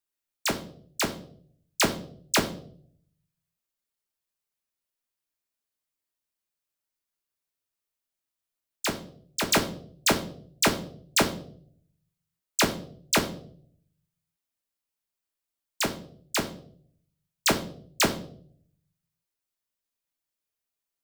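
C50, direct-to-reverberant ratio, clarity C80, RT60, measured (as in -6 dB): 12.0 dB, 4.0 dB, 16.0 dB, 0.60 s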